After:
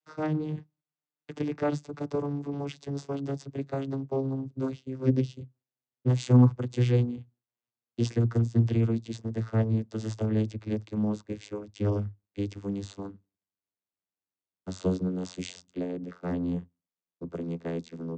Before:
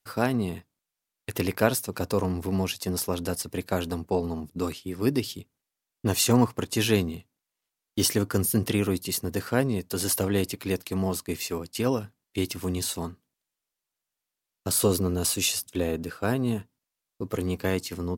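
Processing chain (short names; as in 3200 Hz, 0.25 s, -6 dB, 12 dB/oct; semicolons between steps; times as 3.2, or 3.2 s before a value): vocoder on a gliding note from D#3, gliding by -11 st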